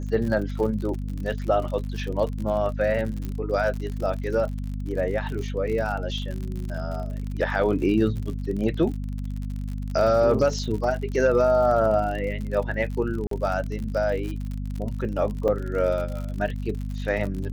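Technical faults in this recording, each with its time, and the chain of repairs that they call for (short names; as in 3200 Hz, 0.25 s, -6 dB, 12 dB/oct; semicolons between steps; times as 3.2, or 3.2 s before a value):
crackle 58/s -31 dBFS
hum 50 Hz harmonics 5 -30 dBFS
3.25 pop -19 dBFS
13.27–13.31 gap 43 ms
15.48–15.49 gap 5.7 ms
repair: de-click; de-hum 50 Hz, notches 5; interpolate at 13.27, 43 ms; interpolate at 15.48, 5.7 ms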